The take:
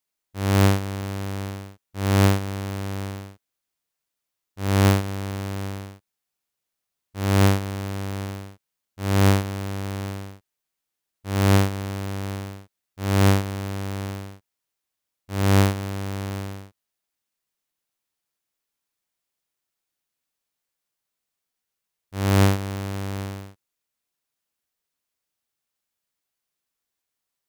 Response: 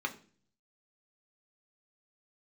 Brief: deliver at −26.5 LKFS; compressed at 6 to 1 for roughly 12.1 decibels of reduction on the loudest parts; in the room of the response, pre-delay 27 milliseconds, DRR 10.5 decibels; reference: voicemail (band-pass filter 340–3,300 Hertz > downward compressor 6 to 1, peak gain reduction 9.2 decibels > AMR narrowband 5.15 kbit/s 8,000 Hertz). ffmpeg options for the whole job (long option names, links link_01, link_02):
-filter_complex "[0:a]acompressor=threshold=-27dB:ratio=6,asplit=2[link_01][link_02];[1:a]atrim=start_sample=2205,adelay=27[link_03];[link_02][link_03]afir=irnorm=-1:irlink=0,volume=-15dB[link_04];[link_01][link_04]amix=inputs=2:normalize=0,highpass=340,lowpass=3300,acompressor=threshold=-37dB:ratio=6,volume=19dB" -ar 8000 -c:a libopencore_amrnb -b:a 5150